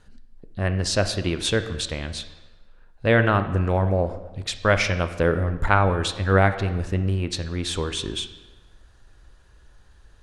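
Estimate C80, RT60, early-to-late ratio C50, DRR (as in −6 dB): 13.0 dB, 1.2 s, 11.5 dB, 9.5 dB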